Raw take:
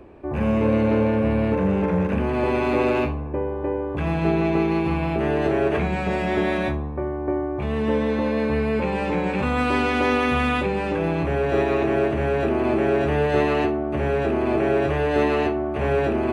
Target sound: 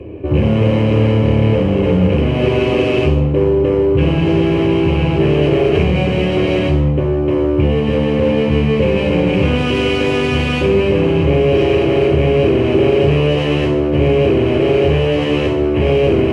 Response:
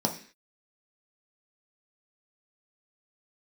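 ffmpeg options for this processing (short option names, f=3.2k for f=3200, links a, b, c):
-filter_complex "[0:a]acontrast=39,volume=20dB,asoftclip=hard,volume=-20dB[a];[1:a]atrim=start_sample=2205,asetrate=23373,aresample=44100[b];[a][b]afir=irnorm=-1:irlink=0,volume=-8.5dB"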